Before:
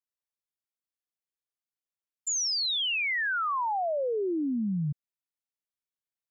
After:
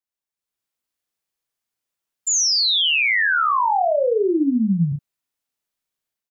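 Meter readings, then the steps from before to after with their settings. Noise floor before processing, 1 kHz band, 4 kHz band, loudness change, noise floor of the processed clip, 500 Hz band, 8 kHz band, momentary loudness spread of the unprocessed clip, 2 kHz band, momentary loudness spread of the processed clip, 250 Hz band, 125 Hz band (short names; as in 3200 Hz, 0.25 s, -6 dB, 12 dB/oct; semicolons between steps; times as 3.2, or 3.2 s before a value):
under -85 dBFS, +10.5 dB, +10.0 dB, +10.5 dB, under -85 dBFS, +10.0 dB, n/a, 7 LU, +10.0 dB, 7 LU, +10.0 dB, +10.0 dB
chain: AGC gain up to 9 dB; on a send: early reflections 36 ms -6 dB, 64 ms -11 dB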